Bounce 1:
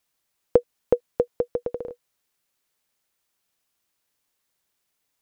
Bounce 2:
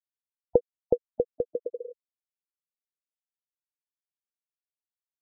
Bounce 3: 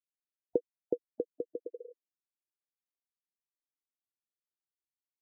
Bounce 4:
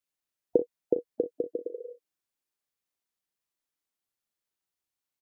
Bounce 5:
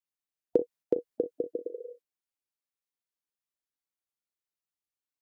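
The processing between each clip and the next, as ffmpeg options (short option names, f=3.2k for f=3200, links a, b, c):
-af "afftfilt=real='re*gte(hypot(re,im),0.112)':imag='im*gte(hypot(re,im),0.112)':win_size=1024:overlap=0.75,volume=-3.5dB"
-af "bandpass=f=320:t=q:w=3.2:csg=0"
-af "aecho=1:1:37|60:0.335|0.15,volume=6dB"
-af "agate=range=-7dB:threshold=-53dB:ratio=16:detection=peak,volume=-1dB"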